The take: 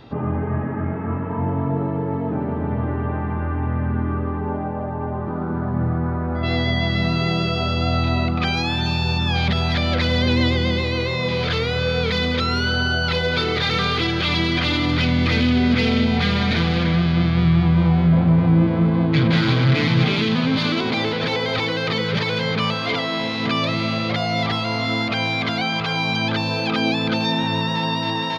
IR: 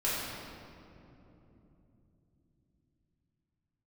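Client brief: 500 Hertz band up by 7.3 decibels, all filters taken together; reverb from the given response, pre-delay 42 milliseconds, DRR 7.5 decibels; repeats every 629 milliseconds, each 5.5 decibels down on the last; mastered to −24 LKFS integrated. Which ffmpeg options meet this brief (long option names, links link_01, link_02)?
-filter_complex "[0:a]equalizer=frequency=500:width_type=o:gain=8.5,aecho=1:1:629|1258|1887|2516|3145|3774|4403:0.531|0.281|0.149|0.079|0.0419|0.0222|0.0118,asplit=2[link_01][link_02];[1:a]atrim=start_sample=2205,adelay=42[link_03];[link_02][link_03]afir=irnorm=-1:irlink=0,volume=-16.5dB[link_04];[link_01][link_04]amix=inputs=2:normalize=0,volume=-8dB"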